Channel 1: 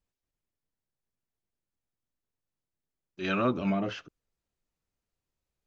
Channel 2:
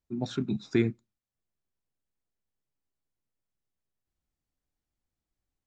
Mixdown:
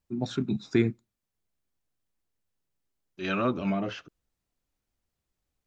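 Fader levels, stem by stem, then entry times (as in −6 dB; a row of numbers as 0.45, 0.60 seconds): 0.0, +1.5 decibels; 0.00, 0.00 seconds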